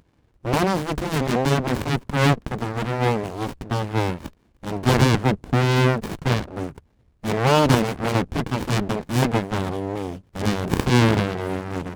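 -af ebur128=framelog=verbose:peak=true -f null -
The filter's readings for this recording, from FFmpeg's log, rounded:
Integrated loudness:
  I:         -22.3 LUFS
  Threshold: -32.7 LUFS
Loudness range:
  LRA:         2.3 LU
  Threshold: -42.7 LUFS
  LRA low:   -23.8 LUFS
  LRA high:  -21.5 LUFS
True peak:
  Peak:       -3.5 dBFS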